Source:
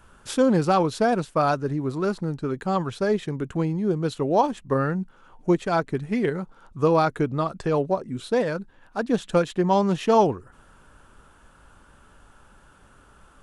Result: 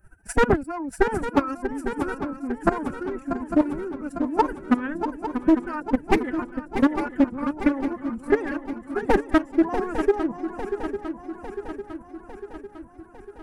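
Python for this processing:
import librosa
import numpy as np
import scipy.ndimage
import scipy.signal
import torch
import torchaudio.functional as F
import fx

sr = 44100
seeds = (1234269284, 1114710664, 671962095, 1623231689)

p1 = fx.dereverb_blind(x, sr, rt60_s=1.5)
p2 = fx.peak_eq(p1, sr, hz=3900.0, db=-14.0, octaves=1.5)
p3 = fx.fixed_phaser(p2, sr, hz=1500.0, stages=4)
p4 = fx.rider(p3, sr, range_db=4, speed_s=2.0)
p5 = p3 + F.gain(torch.from_numpy(p4), -2.0).numpy()
p6 = fx.transient(p5, sr, attack_db=8, sustain_db=-4)
p7 = np.clip(p6, -10.0 ** (-10.5 / 20.0), 10.0 ** (-10.5 / 20.0))
p8 = fx.level_steps(p7, sr, step_db=16)
p9 = fx.pitch_keep_formants(p8, sr, semitones=10.5)
p10 = p9 + fx.echo_swing(p9, sr, ms=852, ratio=3, feedback_pct=57, wet_db=-9.0, dry=0)
p11 = fx.doppler_dist(p10, sr, depth_ms=0.31)
y = F.gain(torch.from_numpy(p11), 2.5).numpy()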